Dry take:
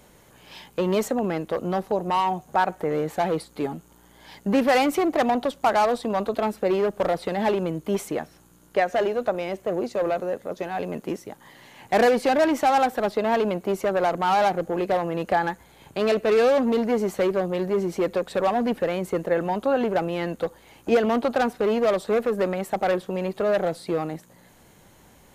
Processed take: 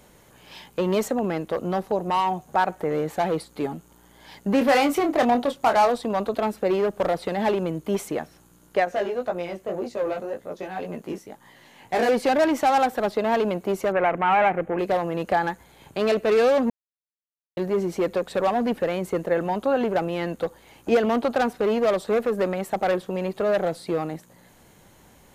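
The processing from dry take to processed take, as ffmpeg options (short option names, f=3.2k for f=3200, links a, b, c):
-filter_complex "[0:a]asettb=1/sr,asplit=3[a][b][c];[a]atrim=end=4.584[d];[b]atrim=start=4.58:end=5.9,asetpts=PTS-STARTPTS,afade=t=in:d=0.004:c=qsin,afade=t=out:st=1.316:d=0.004:c=qsin,asplit=2[e][f];[f]adelay=25,volume=-7dB[g];[e][g]amix=inputs=2:normalize=0,atrim=end_sample=58212[h];[c]atrim=start=5.896[i];[d][h]acrossfade=d=0.004:c1=hsin:c2=qsin[j];[j][i]acrossfade=d=0.004:c1=qsin:c2=hsin,asettb=1/sr,asplit=3[k][l][m];[k]atrim=end=8.854[n];[l]atrim=start=8.85:end=12.09,asetpts=PTS-STARTPTS,afade=t=in:d=0.004:c=qsin,afade=t=out:st=3.236:d=0.004:c=qsin,flanger=delay=17:depth=4.2:speed=1.9[o];[m]atrim=start=12.086[p];[n][o]acrossfade=d=0.004:c1=hsin:c2=qsin[q];[q][p]acrossfade=d=0.004:c1=qsin:c2=hsin,asettb=1/sr,asplit=3[r][s][t];[r]atrim=end=13.924[u];[s]atrim=start=13.92:end=14.79,asetpts=PTS-STARTPTS,afade=t=in:d=0.004:c=qsin,afade=t=out:st=0.866:d=0.004:c=qsin,highshelf=f=3.3k:t=q:w=3:g=-13[v];[t]atrim=start=14.786[w];[u][v]acrossfade=d=0.004:c1=hsin:c2=qsin[x];[x][w]acrossfade=d=0.004:c1=qsin:c2=hsin,asplit=3[y][z][aa];[y]atrim=end=16.7,asetpts=PTS-STARTPTS,afade=t=out:st=16.696:d=0.004:c=hsin[ab];[z]atrim=start=16.7:end=17.57,asetpts=PTS-STARTPTS,volume=0[ac];[aa]atrim=start=17.57,asetpts=PTS-STARTPTS,afade=t=in:d=0.004:c=hsin[ad];[ab][ac][ad]concat=n=3:v=0:a=1"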